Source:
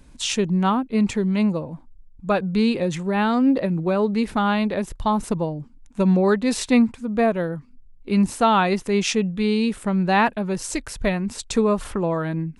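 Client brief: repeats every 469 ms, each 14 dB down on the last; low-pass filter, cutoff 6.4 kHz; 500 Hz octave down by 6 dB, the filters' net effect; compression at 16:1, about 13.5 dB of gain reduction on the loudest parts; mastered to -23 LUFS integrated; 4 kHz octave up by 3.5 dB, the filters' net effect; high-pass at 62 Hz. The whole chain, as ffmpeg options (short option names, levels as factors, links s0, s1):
-af "highpass=62,lowpass=6400,equalizer=f=500:t=o:g=-8,equalizer=f=4000:t=o:g=5,acompressor=threshold=0.0398:ratio=16,aecho=1:1:469|938:0.2|0.0399,volume=2.99"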